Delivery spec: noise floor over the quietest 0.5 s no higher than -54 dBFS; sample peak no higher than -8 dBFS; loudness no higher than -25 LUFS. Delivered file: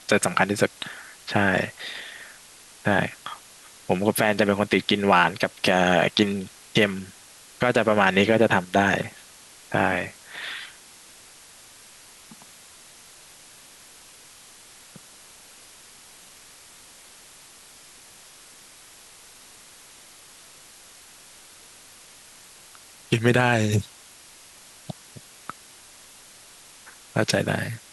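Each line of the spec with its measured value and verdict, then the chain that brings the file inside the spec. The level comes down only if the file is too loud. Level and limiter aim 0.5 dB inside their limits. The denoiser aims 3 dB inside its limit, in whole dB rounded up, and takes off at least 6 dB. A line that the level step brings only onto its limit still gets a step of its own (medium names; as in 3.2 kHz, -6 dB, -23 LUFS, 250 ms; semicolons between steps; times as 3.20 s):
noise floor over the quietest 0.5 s -49 dBFS: fail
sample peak -5.5 dBFS: fail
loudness -23.0 LUFS: fail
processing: noise reduction 6 dB, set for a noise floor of -49 dBFS; trim -2.5 dB; peak limiter -8.5 dBFS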